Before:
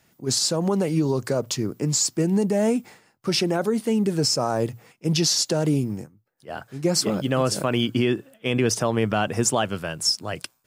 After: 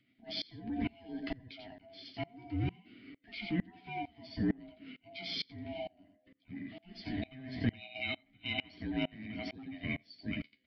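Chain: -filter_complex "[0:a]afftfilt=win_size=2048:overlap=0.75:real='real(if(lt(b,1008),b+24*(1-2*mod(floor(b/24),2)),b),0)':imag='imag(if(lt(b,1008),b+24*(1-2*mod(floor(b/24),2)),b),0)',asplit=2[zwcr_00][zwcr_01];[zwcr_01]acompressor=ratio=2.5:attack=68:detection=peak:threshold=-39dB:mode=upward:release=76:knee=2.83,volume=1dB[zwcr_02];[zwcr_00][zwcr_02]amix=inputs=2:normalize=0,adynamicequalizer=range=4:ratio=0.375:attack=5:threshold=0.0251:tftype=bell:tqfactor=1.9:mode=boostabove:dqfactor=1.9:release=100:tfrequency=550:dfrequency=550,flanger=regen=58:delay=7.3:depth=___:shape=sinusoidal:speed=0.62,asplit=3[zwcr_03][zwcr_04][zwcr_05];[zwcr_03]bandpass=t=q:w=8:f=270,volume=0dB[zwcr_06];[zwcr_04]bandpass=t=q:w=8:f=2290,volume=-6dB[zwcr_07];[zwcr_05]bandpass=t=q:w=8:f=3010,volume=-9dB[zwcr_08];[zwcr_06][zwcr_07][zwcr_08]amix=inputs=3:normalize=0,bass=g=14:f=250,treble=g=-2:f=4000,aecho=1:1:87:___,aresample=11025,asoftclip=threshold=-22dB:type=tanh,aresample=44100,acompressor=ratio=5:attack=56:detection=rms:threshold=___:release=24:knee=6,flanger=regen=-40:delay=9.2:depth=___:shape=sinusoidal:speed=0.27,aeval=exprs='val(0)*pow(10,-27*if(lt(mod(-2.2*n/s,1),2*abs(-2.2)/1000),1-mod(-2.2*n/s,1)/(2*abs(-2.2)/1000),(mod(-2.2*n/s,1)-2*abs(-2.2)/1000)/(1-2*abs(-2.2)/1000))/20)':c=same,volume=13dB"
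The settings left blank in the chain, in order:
6.3, 0.316, -40dB, 1.4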